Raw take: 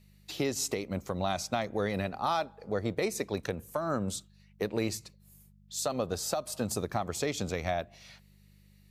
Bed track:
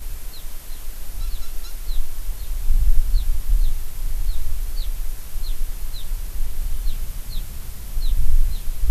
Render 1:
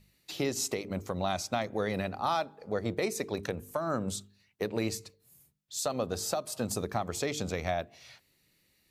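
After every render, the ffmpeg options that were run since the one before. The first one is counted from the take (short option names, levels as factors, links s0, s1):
-af "bandreject=f=50:t=h:w=4,bandreject=f=100:t=h:w=4,bandreject=f=150:t=h:w=4,bandreject=f=200:t=h:w=4,bandreject=f=250:t=h:w=4,bandreject=f=300:t=h:w=4,bandreject=f=350:t=h:w=4,bandreject=f=400:t=h:w=4,bandreject=f=450:t=h:w=4"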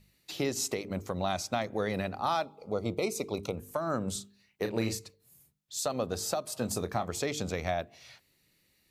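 -filter_complex "[0:a]asettb=1/sr,asplit=3[s0][s1][s2];[s0]atrim=end=2.454[s3];[s1]atrim=start=2.45:end=3.57,asetpts=PTS-STARTPTS,afade=t=in:d=0.004:c=qsin,afade=t=out:st=1.116:d=0.004:c=qsin,asuperstop=centerf=1700:order=8:qfactor=2.5[s4];[s2]atrim=start=3.566[s5];[s3][s4]acrossfade=d=0.004:c1=hsin:c2=qsin[s6];[s6][s5]acrossfade=d=0.004:c1=qsin:c2=hsin,asettb=1/sr,asplit=3[s7][s8][s9];[s7]atrim=end=4.124[s10];[s8]atrim=start=4.12:end=4.99,asetpts=PTS-STARTPTS,afade=t=in:d=0.004:c=qsin,afade=t=out:st=0.866:d=0.004:c=qsin,asplit=2[s11][s12];[s12]adelay=35,volume=0.447[s13];[s11][s13]amix=inputs=2:normalize=0,atrim=end_sample=38367[s14];[s9]atrim=start=4.986[s15];[s10][s14]acrossfade=d=0.004:c1=hsin:c2=qsin[s16];[s16][s15]acrossfade=d=0.004:c1=qsin:c2=hsin,asettb=1/sr,asplit=3[s17][s18][s19];[s17]atrim=end=6.594[s20];[s18]atrim=start=6.59:end=7.1,asetpts=PTS-STARTPTS,afade=t=in:d=0.004:c=qsin,afade=t=out:st=0.506:d=0.004:c=qsin,asplit=2[s21][s22];[s22]adelay=24,volume=0.266[s23];[s21][s23]amix=inputs=2:normalize=0,atrim=end_sample=22491[s24];[s19]atrim=start=7.096[s25];[s20][s24]acrossfade=d=0.004:c1=hsin:c2=qsin[s26];[s26][s25]acrossfade=d=0.004:c1=qsin:c2=hsin"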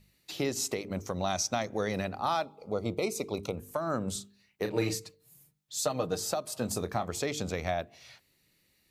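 -filter_complex "[0:a]asettb=1/sr,asplit=3[s0][s1][s2];[s0]atrim=end=0.964[s3];[s1]atrim=start=0.96:end=2.05,asetpts=PTS-STARTPTS,afade=t=in:d=0.004:c=qsin,afade=t=out:st=1.086:d=0.004:c=qsin,equalizer=f=5900:w=4.3:g=12[s4];[s2]atrim=start=2.046[s5];[s3][s4]acrossfade=d=0.004:c1=hsin:c2=qsin[s6];[s6][s5]acrossfade=d=0.004:c1=qsin:c2=hsin,asettb=1/sr,asplit=3[s7][s8][s9];[s7]atrim=end=4.704[s10];[s8]atrim=start=4.7:end=6.2,asetpts=PTS-STARTPTS,afade=t=in:d=0.004:c=qsin,afade=t=out:st=1.496:d=0.004:c=qsin,aecho=1:1:6.5:0.66,atrim=end_sample=66150[s11];[s9]atrim=start=6.196[s12];[s10][s11]acrossfade=d=0.004:c1=hsin:c2=qsin[s13];[s13][s12]acrossfade=d=0.004:c1=qsin:c2=hsin"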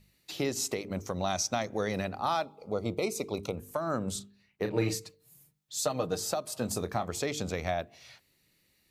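-filter_complex "[0:a]asettb=1/sr,asplit=3[s0][s1][s2];[s0]atrim=end=4.194[s3];[s1]atrim=start=4.19:end=4.89,asetpts=PTS-STARTPTS,afade=t=in:d=0.004:c=qsin,afade=t=out:st=0.696:d=0.004:c=qsin,bass=f=250:g=3,treble=f=4000:g=-7[s4];[s2]atrim=start=4.886[s5];[s3][s4]acrossfade=d=0.004:c1=hsin:c2=qsin[s6];[s6][s5]acrossfade=d=0.004:c1=qsin:c2=hsin"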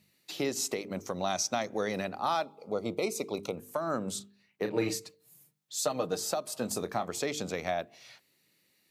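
-af "highpass=170"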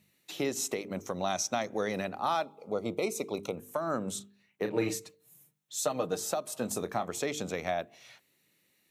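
-af "equalizer=f=4700:t=o:w=0.23:g=-9"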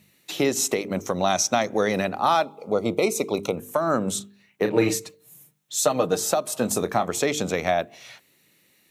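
-af "volume=2.99"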